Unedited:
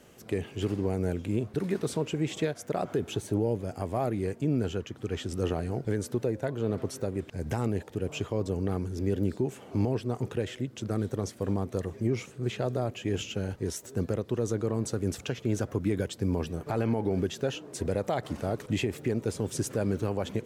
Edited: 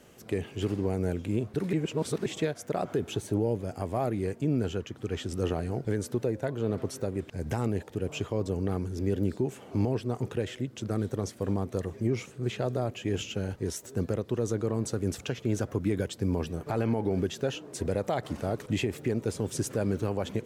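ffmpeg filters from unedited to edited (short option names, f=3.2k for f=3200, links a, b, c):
-filter_complex "[0:a]asplit=3[a][b][c];[a]atrim=end=1.732[d];[b]atrim=start=1.728:end=2.262,asetpts=PTS-STARTPTS,areverse[e];[c]atrim=start=2.258[f];[d][e]acrossfade=d=0.004:c1=hsin:c2=hsin[g];[g][f]acrossfade=d=0.004:c1=hsin:c2=hsin"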